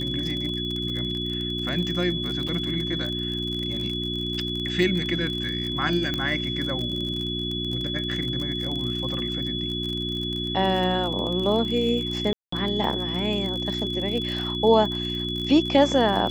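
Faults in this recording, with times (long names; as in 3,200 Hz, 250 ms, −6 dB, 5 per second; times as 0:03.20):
surface crackle 41 per second −29 dBFS
mains hum 60 Hz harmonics 6 −31 dBFS
whistle 3,400 Hz −29 dBFS
0:02.48: drop-out 5 ms
0:06.14: click −14 dBFS
0:12.33–0:12.52: drop-out 194 ms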